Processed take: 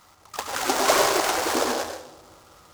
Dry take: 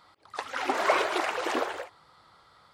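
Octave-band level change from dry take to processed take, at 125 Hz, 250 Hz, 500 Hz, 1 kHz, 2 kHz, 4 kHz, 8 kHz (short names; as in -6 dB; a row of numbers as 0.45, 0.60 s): n/a, +6.5 dB, +5.5 dB, +5.0 dB, +3.5 dB, +9.5 dB, +17.5 dB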